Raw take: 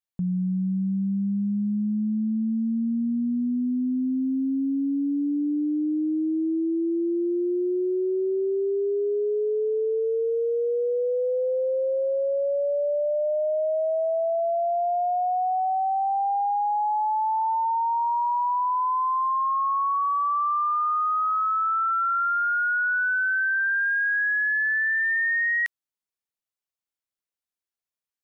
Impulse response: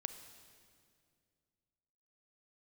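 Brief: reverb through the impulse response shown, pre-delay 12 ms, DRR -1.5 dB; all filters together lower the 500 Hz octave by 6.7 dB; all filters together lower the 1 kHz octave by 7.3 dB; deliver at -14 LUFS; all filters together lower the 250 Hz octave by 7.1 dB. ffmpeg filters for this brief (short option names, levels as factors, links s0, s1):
-filter_complex "[0:a]equalizer=f=250:t=o:g=-7.5,equalizer=f=500:t=o:g=-4,equalizer=f=1000:t=o:g=-8,asplit=2[s0][s1];[1:a]atrim=start_sample=2205,adelay=12[s2];[s1][s2]afir=irnorm=-1:irlink=0,volume=1.5[s3];[s0][s3]amix=inputs=2:normalize=0,volume=3.98"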